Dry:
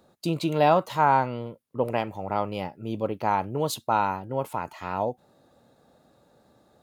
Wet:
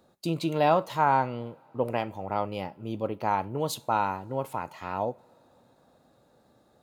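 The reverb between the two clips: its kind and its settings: two-slope reverb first 0.38 s, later 4.4 s, from -22 dB, DRR 17.5 dB; trim -2.5 dB

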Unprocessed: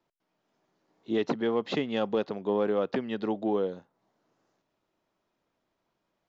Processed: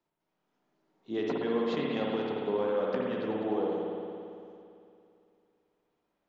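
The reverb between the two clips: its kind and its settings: spring tank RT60 2.6 s, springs 56 ms, chirp 45 ms, DRR -3 dB; trim -6.5 dB

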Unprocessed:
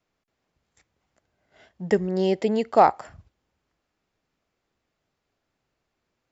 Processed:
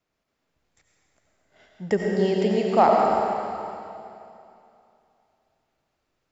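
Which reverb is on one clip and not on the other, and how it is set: algorithmic reverb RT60 2.7 s, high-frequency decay 1×, pre-delay 50 ms, DRR -1.5 dB; trim -2 dB

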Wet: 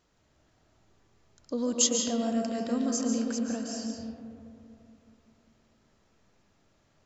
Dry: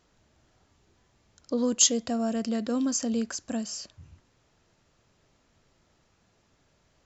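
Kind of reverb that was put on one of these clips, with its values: algorithmic reverb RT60 2.6 s, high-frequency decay 0.3×, pre-delay 100 ms, DRR 0.5 dB; trim -4 dB

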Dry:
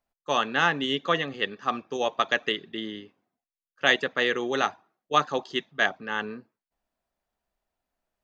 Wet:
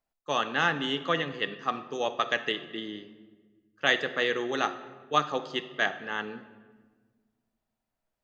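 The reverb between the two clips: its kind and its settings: simulated room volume 1300 m³, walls mixed, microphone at 0.56 m; trim -3 dB

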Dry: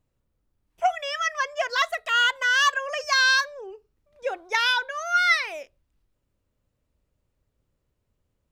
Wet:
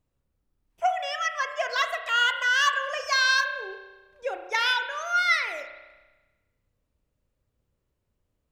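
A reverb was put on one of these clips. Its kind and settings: spring tank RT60 1.2 s, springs 31 ms, chirp 80 ms, DRR 7 dB; trim -2.5 dB

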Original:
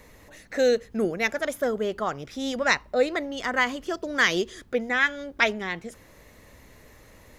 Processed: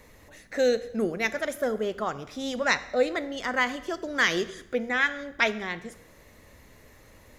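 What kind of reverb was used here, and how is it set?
plate-style reverb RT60 0.87 s, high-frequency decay 0.85×, DRR 13 dB; trim -2 dB

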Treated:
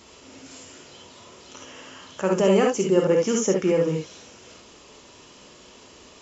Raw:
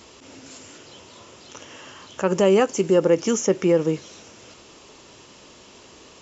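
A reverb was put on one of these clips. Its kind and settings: gated-style reverb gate 90 ms rising, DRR 1 dB; trim -3.5 dB

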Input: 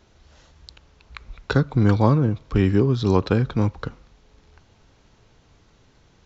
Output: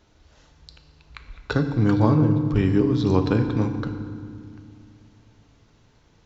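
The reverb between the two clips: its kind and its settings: FDN reverb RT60 2 s, low-frequency decay 1.6×, high-frequency decay 0.7×, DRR 6.5 dB; trim -3 dB

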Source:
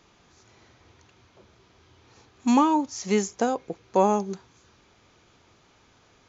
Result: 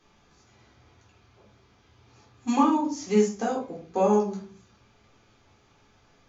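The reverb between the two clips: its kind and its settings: simulated room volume 300 m³, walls furnished, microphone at 3.8 m; trim -9.5 dB

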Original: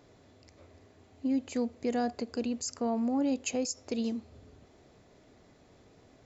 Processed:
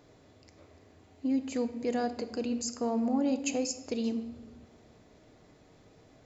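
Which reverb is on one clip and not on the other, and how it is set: simulated room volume 640 m³, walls mixed, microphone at 0.52 m

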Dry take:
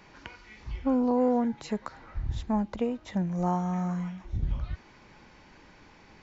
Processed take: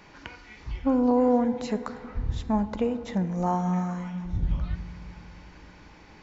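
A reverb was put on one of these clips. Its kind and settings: FDN reverb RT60 2.2 s, low-frequency decay 1.5×, high-frequency decay 0.35×, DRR 11.5 dB; trim +2.5 dB

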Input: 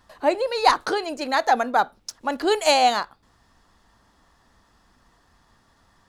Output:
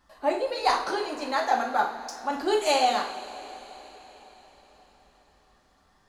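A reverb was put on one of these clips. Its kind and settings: two-slope reverb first 0.48 s, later 4.8 s, from -18 dB, DRR -1 dB; trim -8 dB

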